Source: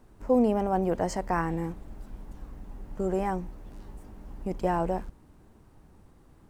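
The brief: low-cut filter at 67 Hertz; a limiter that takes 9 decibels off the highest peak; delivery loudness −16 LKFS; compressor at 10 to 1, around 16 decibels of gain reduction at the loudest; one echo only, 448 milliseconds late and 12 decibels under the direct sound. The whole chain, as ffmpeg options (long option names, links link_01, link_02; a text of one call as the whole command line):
ffmpeg -i in.wav -af "highpass=67,acompressor=threshold=-34dB:ratio=10,alimiter=level_in=8.5dB:limit=-24dB:level=0:latency=1,volume=-8.5dB,aecho=1:1:448:0.251,volume=28dB" out.wav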